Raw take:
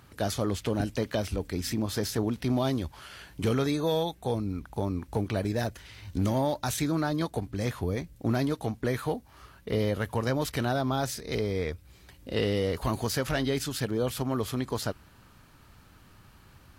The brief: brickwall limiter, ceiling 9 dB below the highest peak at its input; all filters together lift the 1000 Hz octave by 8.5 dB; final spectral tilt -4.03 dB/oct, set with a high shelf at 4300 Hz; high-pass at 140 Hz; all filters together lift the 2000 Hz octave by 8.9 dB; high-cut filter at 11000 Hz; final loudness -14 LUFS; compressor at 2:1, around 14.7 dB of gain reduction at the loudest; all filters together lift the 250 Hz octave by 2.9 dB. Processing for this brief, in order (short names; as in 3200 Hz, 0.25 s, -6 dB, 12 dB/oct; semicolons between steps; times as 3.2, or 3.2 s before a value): HPF 140 Hz; LPF 11000 Hz; bell 250 Hz +3.5 dB; bell 1000 Hz +9 dB; bell 2000 Hz +6.5 dB; high shelf 4300 Hz +8 dB; compressor 2:1, threshold -47 dBFS; gain +28.5 dB; limiter -1.5 dBFS